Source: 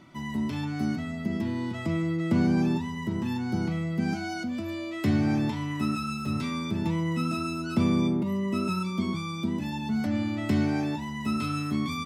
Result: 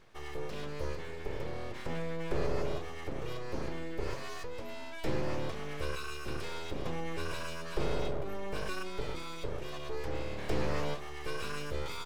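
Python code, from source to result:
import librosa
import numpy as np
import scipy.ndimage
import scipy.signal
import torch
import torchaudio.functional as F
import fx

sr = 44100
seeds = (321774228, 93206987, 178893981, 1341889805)

y = np.abs(x)
y = fx.env_flatten(y, sr, amount_pct=50, at=(10.48, 10.93), fade=0.02)
y = y * 10.0 ** (-5.5 / 20.0)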